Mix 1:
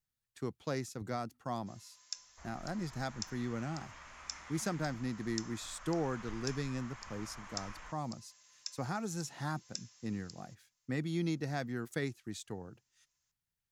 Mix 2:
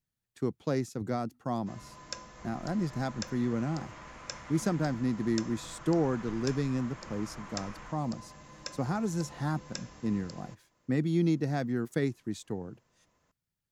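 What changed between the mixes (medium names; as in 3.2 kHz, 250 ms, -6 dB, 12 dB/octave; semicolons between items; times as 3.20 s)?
first sound: remove band-pass filter 6 kHz, Q 1.4; master: add peaking EQ 250 Hz +8.5 dB 3 oct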